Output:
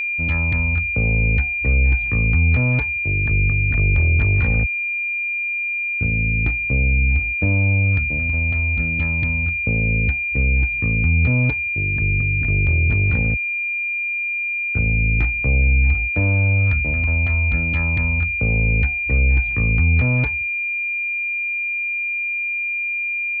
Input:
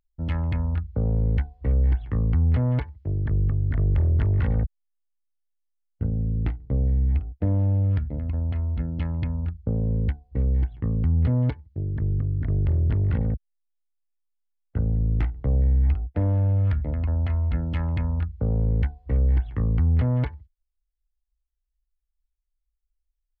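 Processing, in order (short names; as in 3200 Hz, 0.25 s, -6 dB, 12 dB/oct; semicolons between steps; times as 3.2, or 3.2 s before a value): whine 2400 Hz -24 dBFS; gain +3.5 dB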